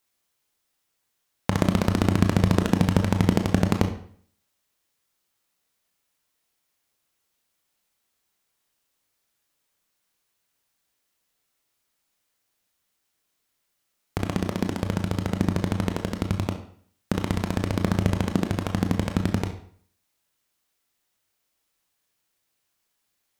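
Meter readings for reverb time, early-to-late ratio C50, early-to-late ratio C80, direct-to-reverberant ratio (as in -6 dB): 0.55 s, 9.5 dB, 13.0 dB, 5.0 dB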